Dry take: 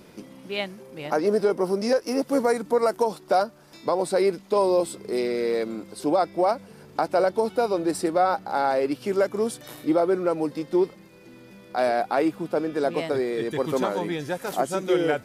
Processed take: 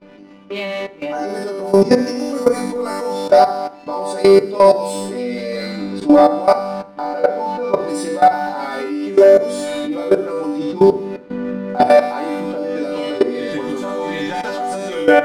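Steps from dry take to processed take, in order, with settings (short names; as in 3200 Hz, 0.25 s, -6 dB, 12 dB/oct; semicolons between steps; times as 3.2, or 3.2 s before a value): 7.01–7.77 air absorption 160 m; low-pass opened by the level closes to 2400 Hz, open at -18 dBFS; 10.59–11.82 bell 190 Hz +9.5 dB 2.1 oct; resonator bank G3 major, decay 0.78 s; sample leveller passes 1; level quantiser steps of 19 dB; FDN reverb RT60 0.49 s, low-frequency decay 1.3×, high-frequency decay 0.3×, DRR 8.5 dB; maximiser +34 dB; gain -1 dB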